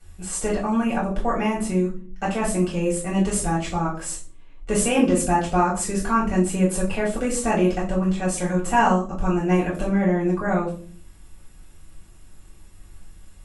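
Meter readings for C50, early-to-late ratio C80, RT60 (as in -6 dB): 8.5 dB, 13.5 dB, 0.45 s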